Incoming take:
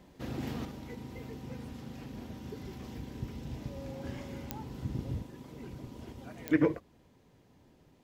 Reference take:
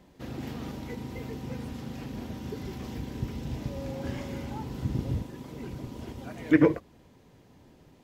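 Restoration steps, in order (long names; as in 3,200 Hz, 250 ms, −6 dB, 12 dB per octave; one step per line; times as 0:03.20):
click removal
level correction +6 dB, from 0:00.65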